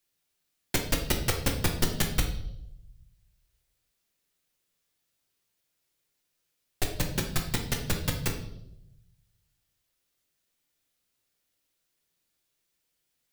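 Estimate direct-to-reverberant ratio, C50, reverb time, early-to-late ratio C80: 2.0 dB, 7.5 dB, 0.80 s, 11.0 dB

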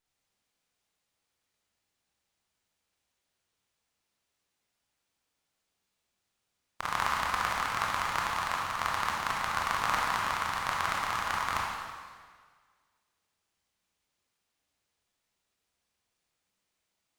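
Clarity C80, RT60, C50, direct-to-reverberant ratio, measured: 2.0 dB, 1.7 s, -0.5 dB, -3.5 dB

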